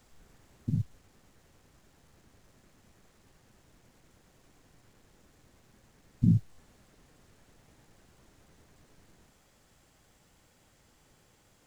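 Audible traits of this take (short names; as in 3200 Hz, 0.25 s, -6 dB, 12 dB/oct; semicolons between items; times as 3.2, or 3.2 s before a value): noise floor -65 dBFS; spectral tilt -17.0 dB/oct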